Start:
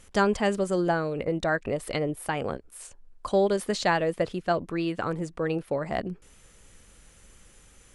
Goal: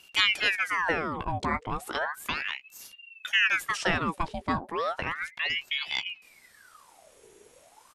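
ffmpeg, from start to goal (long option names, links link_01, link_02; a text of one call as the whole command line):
ffmpeg -i in.wav -filter_complex "[0:a]asplit=2[link_01][link_02];[link_02]adelay=15,volume=-11dB[link_03];[link_01][link_03]amix=inputs=2:normalize=0,aeval=exprs='val(0)*sin(2*PI*1600*n/s+1600*0.75/0.34*sin(2*PI*0.34*n/s))':channel_layout=same" out.wav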